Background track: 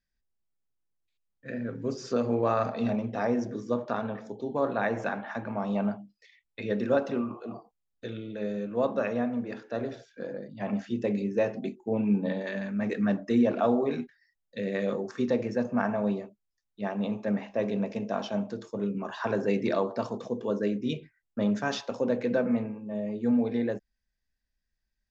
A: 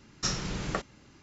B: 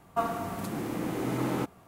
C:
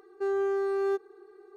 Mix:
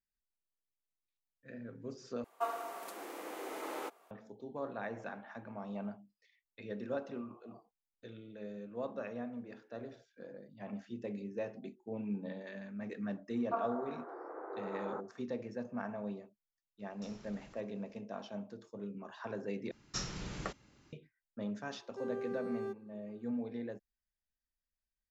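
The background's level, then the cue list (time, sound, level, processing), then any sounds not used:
background track -13 dB
2.24 replace with B -6.5 dB + HPF 410 Hz 24 dB/oct
13.35 add B -6.5 dB + elliptic band-pass 400–1500 Hz
16.79 add A -17 dB + compressor 5:1, threshold -37 dBFS
19.71 replace with A -8.5 dB
21.76 add C -13 dB

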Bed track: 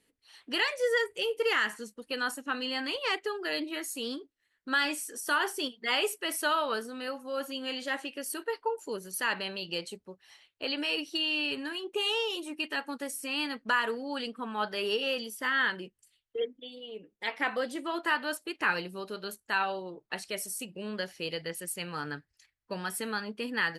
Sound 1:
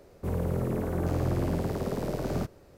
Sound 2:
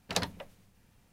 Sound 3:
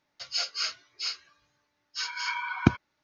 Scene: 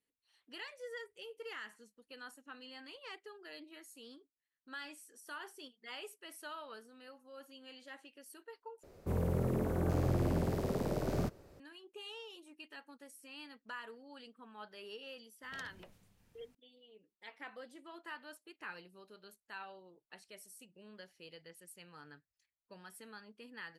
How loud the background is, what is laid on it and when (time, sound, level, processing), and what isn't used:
bed track -18.5 dB
8.83 replace with 1 -4 dB
15.43 add 2 -6 dB + compressor, threshold -44 dBFS
not used: 3

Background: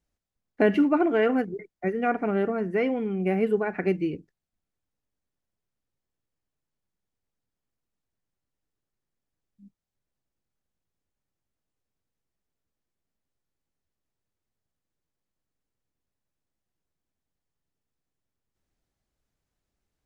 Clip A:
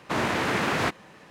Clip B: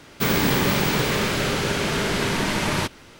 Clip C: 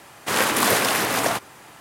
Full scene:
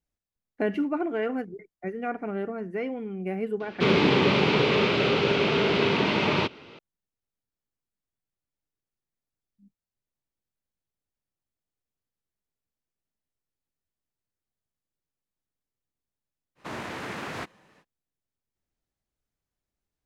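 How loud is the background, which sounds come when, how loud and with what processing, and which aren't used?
background -6 dB
3.6 add B -0.5 dB + speaker cabinet 130–4100 Hz, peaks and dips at 420 Hz +6 dB, 1700 Hz -7 dB, 2600 Hz +4 dB
16.55 add A -10 dB, fades 0.05 s
not used: C

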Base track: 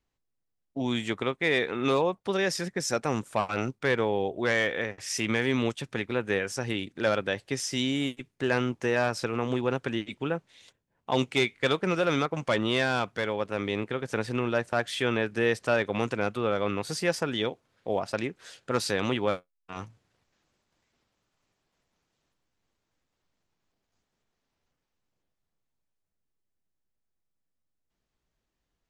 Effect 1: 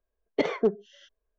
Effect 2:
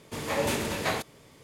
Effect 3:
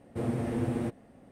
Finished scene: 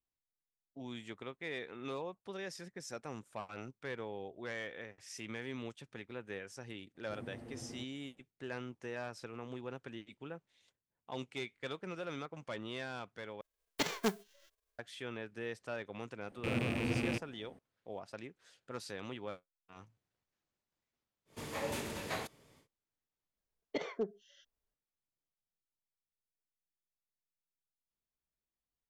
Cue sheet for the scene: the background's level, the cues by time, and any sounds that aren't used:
base track -16.5 dB
6.94 add 3 -18 dB, fades 0.02 s
13.41 replace with 1 -9.5 dB + spectral whitening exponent 0.3
16.28 add 3 -5 dB + rattling part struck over -40 dBFS, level -23 dBFS
21.25 add 2 -10 dB, fades 0.10 s + vocal rider
23.36 add 1 -13 dB + high shelf 4300 Hz +10 dB

